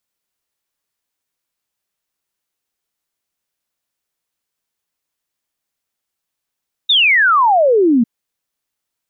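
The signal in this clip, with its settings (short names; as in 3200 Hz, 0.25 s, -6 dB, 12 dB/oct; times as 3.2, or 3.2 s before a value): log sweep 3800 Hz -> 220 Hz 1.15 s -8.5 dBFS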